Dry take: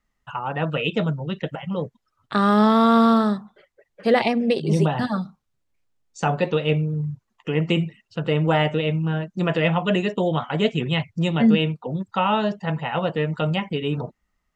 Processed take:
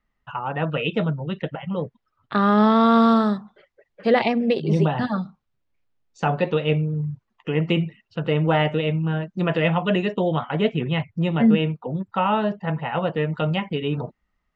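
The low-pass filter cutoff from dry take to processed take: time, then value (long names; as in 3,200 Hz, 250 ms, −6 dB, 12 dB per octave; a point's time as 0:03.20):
0:02.54 3,500 Hz
0:03.11 6,100 Hz
0:04.53 3,900 Hz
0:10.17 3,900 Hz
0:10.78 2,500 Hz
0:12.80 2,500 Hz
0:13.47 4,100 Hz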